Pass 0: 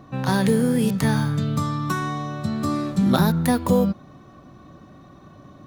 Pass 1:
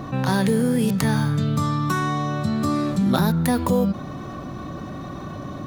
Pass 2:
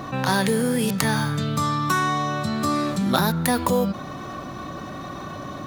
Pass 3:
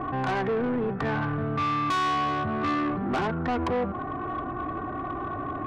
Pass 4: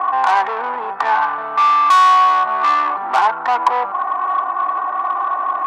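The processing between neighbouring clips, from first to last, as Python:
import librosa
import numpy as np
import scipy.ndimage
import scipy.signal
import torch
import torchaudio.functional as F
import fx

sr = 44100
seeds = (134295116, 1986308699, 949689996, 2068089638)

y1 = fx.env_flatten(x, sr, amount_pct=50)
y1 = y1 * 10.0 ** (-2.5 / 20.0)
y2 = fx.low_shelf(y1, sr, hz=440.0, db=-9.5)
y2 = y2 * 10.0 ** (4.5 / 20.0)
y3 = scipy.signal.sosfilt(scipy.signal.butter(4, 1500.0, 'lowpass', fs=sr, output='sos'), y2)
y3 = y3 + 0.66 * np.pad(y3, (int(2.7 * sr / 1000.0), 0))[:len(y3)]
y3 = 10.0 ** (-24.0 / 20.0) * np.tanh(y3 / 10.0 ** (-24.0 / 20.0))
y3 = y3 * 10.0 ** (1.0 / 20.0)
y4 = fx.highpass_res(y3, sr, hz=910.0, q=4.9)
y4 = fx.high_shelf(y4, sr, hz=5400.0, db=8.0)
y4 = y4 * 10.0 ** (7.0 / 20.0)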